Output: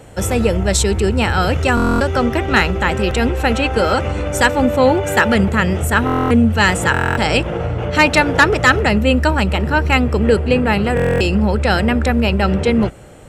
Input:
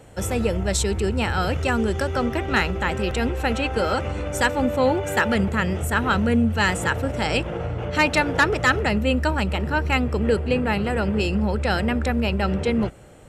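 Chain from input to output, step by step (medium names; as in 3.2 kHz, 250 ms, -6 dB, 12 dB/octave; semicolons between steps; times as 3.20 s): buffer glitch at 1.75/6.05/6.92/10.95 s, samples 1024, times 10; trim +7 dB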